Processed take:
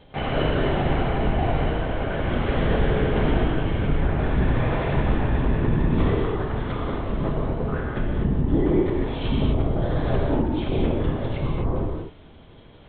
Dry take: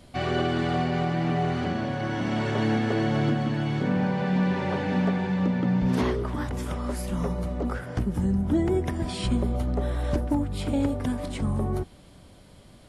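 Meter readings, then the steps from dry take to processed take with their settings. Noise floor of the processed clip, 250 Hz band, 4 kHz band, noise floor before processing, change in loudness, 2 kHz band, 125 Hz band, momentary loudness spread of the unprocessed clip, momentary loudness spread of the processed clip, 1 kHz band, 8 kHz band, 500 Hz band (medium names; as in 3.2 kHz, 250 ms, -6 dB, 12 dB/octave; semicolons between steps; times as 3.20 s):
-47 dBFS, 0.0 dB, +1.5 dB, -51 dBFS, +2.5 dB, +2.0 dB, +3.5 dB, 6 LU, 5 LU, +2.0 dB, under -35 dB, +4.5 dB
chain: LPC vocoder at 8 kHz whisper; gated-style reverb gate 280 ms flat, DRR -2 dB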